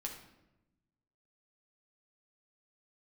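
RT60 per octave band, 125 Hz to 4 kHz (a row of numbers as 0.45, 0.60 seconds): 1.6, 1.4, 1.1, 0.85, 0.75, 0.65 seconds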